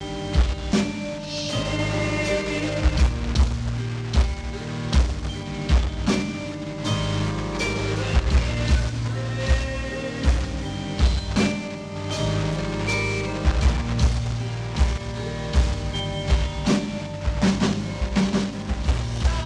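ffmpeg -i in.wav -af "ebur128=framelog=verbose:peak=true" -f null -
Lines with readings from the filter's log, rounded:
Integrated loudness:
  I:         -24.5 LUFS
  Threshold: -34.5 LUFS
Loudness range:
  LRA:         1.2 LU
  Threshold: -44.5 LUFS
  LRA low:   -25.2 LUFS
  LRA high:  -24.0 LUFS
True peak:
  Peak:      -10.6 dBFS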